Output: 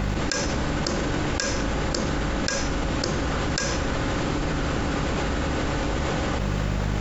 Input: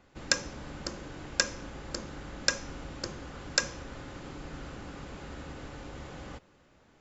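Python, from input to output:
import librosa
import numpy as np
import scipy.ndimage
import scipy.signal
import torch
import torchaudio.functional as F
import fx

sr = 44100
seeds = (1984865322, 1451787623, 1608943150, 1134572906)

y = fx.dmg_buzz(x, sr, base_hz=50.0, harmonics=4, level_db=-58.0, tilt_db=-4, odd_only=False)
y = fx.env_flatten(y, sr, amount_pct=100)
y = F.gain(torch.from_numpy(y), -3.0).numpy()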